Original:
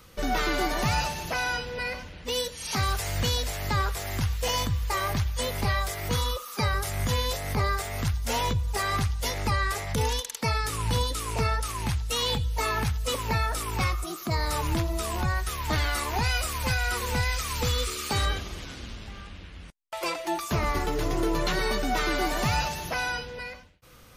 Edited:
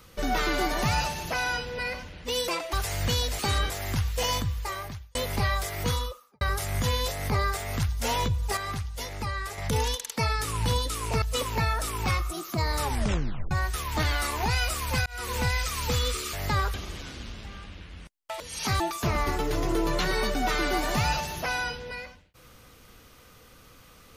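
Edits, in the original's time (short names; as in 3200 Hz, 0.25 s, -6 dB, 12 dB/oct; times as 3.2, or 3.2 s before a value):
2.48–2.88 swap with 20.03–20.28
3.54–3.95 swap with 18.06–18.37
4.58–5.4 fade out
6.11–6.66 studio fade out
8.82–9.83 gain -6 dB
11.47–12.95 cut
14.56 tape stop 0.68 s
16.79–17.07 fade in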